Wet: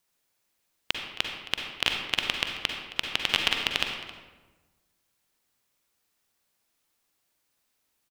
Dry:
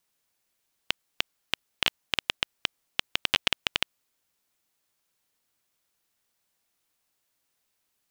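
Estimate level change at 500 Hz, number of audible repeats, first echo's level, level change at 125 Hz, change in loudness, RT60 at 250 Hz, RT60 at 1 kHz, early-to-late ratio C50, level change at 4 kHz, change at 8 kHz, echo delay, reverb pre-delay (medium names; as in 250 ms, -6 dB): +2.0 dB, 1, -16.5 dB, +2.0 dB, +1.5 dB, 1.5 s, 1.2 s, 3.0 dB, +1.5 dB, +1.0 dB, 268 ms, 40 ms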